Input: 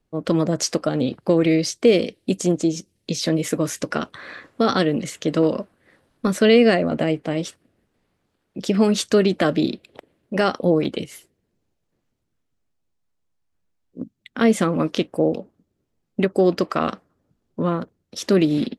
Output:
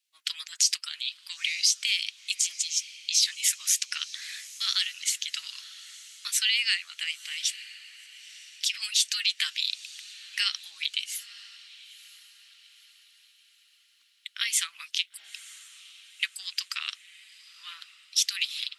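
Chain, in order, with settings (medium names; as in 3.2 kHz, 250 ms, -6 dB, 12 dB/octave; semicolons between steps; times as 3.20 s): inverse Chebyshev high-pass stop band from 570 Hz, stop band 70 dB; peak limiter -19 dBFS, peak gain reduction 8.5 dB; echo that smears into a reverb 962 ms, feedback 45%, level -16 dB; harmonic-percussive split percussive +5 dB; trim +3.5 dB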